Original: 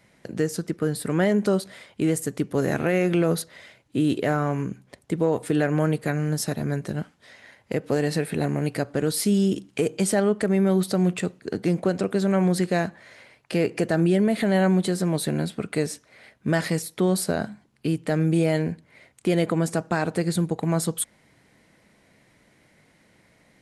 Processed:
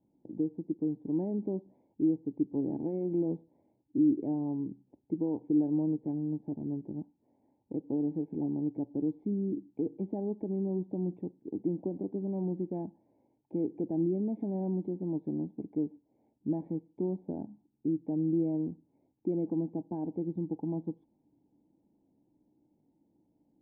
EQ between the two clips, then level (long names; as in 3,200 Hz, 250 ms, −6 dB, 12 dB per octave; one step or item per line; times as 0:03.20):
formant resonators in series u
Butterworth band-reject 1,300 Hz, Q 2.5
parametric band 2,000 Hz −11 dB 0.41 octaves
−1.5 dB